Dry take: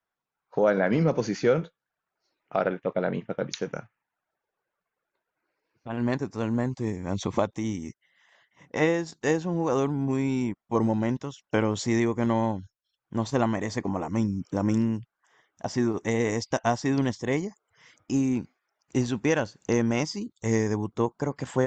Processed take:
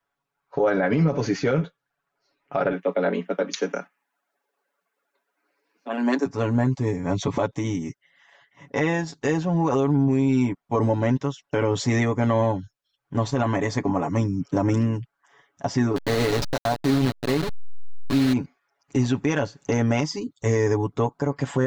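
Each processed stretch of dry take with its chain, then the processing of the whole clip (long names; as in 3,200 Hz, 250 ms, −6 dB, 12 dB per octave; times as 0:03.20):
0:02.72–0:06.26: Butterworth high-pass 180 Hz 96 dB per octave + high-shelf EQ 5,100 Hz +8 dB
0:15.96–0:18.33: hold until the input has moved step −25.5 dBFS + parametric band 4,100 Hz +10 dB 0.31 octaves
whole clip: high-shelf EQ 5,100 Hz −6.5 dB; comb filter 7.1 ms, depth 76%; brickwall limiter −17 dBFS; level +4.5 dB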